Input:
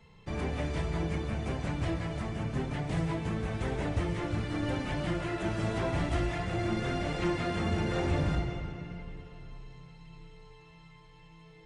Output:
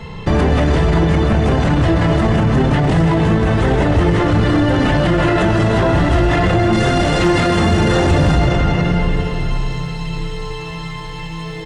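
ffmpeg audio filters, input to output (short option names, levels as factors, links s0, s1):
-filter_complex "[0:a]asetnsamples=n=441:p=0,asendcmd='6.73 highshelf g 4',highshelf=f=5500:g=-9,asplit=2[s0][s1];[s1]adelay=290,highpass=300,lowpass=3400,asoftclip=type=hard:threshold=0.0355,volume=0.355[s2];[s0][s2]amix=inputs=2:normalize=0,asoftclip=type=hard:threshold=0.075,bandreject=f=2300:w=9,alimiter=level_in=44.7:limit=0.891:release=50:level=0:latency=1,volume=0.531"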